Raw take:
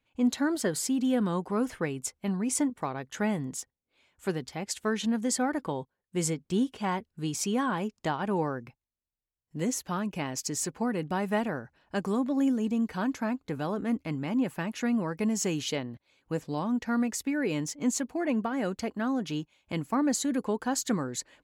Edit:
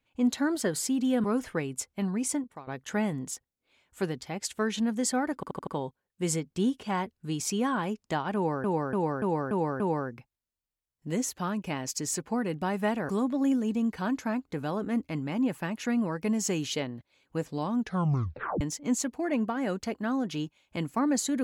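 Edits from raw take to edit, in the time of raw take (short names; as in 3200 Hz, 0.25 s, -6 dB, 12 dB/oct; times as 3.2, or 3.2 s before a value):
1.24–1.5 cut
2.44–2.93 fade out, to -17.5 dB
5.61 stutter 0.08 s, 5 plays
8.29–8.58 loop, 6 plays
11.58–12.05 cut
16.75 tape stop 0.82 s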